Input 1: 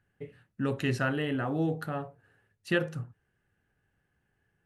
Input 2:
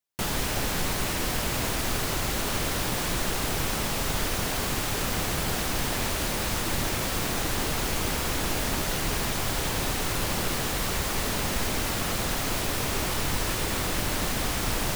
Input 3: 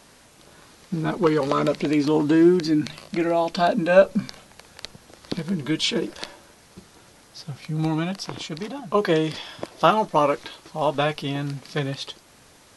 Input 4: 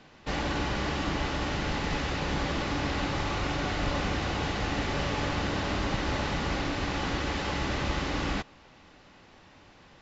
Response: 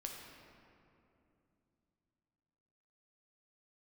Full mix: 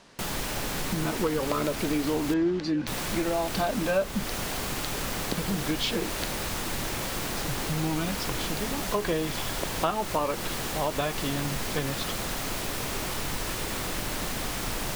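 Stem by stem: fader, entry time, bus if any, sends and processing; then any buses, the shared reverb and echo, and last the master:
−11.0 dB, 0.00 s, bus A, no send, no processing
−3.0 dB, 0.00 s, muted 0:02.34–0:02.87, bus B, no send, no processing
−2.0 dB, 0.00 s, bus B, no send, low-pass filter 6,200 Hz 12 dB per octave
−11.5 dB, 0.00 s, bus A, no send, no processing
bus A: 0.0 dB, brickwall limiter −35.5 dBFS, peak gain reduction 12 dB
bus B: 0.0 dB, parametric band 74 Hz −5.5 dB; downward compressor 3 to 1, threshold −25 dBFS, peak gain reduction 11.5 dB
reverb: not used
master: no processing

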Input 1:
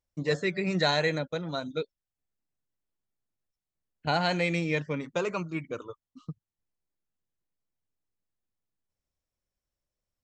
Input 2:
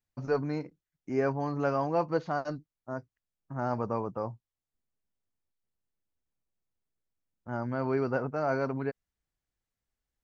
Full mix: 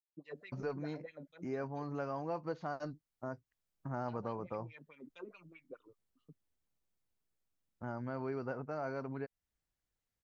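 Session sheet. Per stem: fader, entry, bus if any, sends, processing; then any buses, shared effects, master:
−12.0 dB, 0.00 s, no send, tilt shelving filter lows +5 dB, about 820 Hz; LFO wah 4.7 Hz 220–3,200 Hz, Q 3
−0.5 dB, 0.35 s, no send, speech leveller within 4 dB 2 s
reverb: not used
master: downward compressor 2 to 1, threshold −43 dBFS, peak gain reduction 11 dB

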